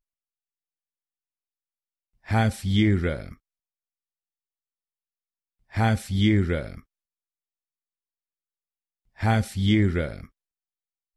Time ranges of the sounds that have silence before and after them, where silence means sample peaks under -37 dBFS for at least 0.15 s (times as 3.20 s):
2.28–3.33 s
5.74–6.79 s
9.20–10.25 s